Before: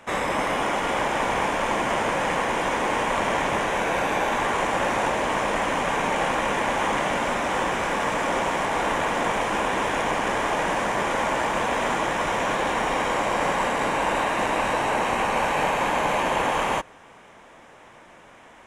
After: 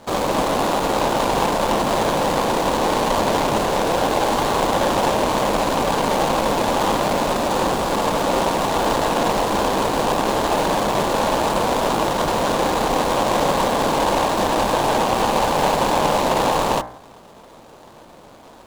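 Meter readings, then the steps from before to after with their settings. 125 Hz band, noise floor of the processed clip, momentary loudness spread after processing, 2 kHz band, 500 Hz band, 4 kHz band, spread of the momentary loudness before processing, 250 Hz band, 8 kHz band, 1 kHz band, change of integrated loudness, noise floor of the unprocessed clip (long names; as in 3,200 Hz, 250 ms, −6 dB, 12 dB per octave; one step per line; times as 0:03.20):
+8.0 dB, −44 dBFS, 2 LU, −2.0 dB, +6.5 dB, +6.0 dB, 1 LU, +7.5 dB, +6.5 dB, +4.5 dB, +4.5 dB, −49 dBFS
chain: running median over 25 samples
bass and treble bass 0 dB, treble +6 dB
hum removal 60.54 Hz, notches 36
level +8 dB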